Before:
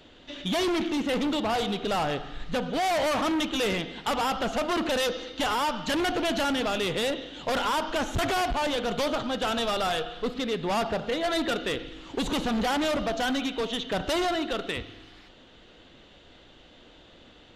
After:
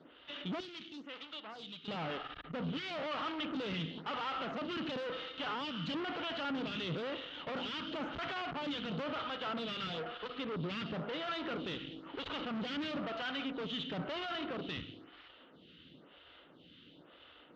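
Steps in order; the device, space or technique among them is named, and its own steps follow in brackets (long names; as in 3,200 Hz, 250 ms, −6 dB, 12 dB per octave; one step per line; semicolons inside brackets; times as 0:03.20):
0:00.60–0:01.88: first-order pre-emphasis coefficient 0.9
vibe pedal into a guitar amplifier (phaser with staggered stages 1 Hz; tube saturation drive 38 dB, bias 0.75; loudspeaker in its box 84–4,200 Hz, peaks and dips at 160 Hz +8 dB, 280 Hz +4 dB, 750 Hz −3 dB, 1,300 Hz +6 dB, 3,000 Hz +6 dB)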